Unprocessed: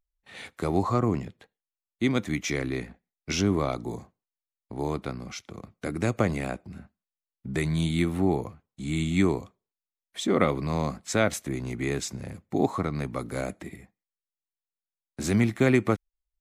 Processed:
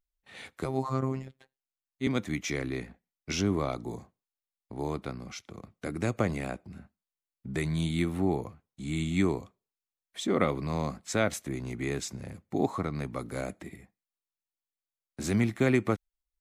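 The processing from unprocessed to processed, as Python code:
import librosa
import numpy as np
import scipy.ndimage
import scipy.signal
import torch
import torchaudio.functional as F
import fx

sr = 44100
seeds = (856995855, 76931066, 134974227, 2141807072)

y = fx.robotise(x, sr, hz=132.0, at=(0.65, 2.07))
y = F.gain(torch.from_numpy(y), -3.5).numpy()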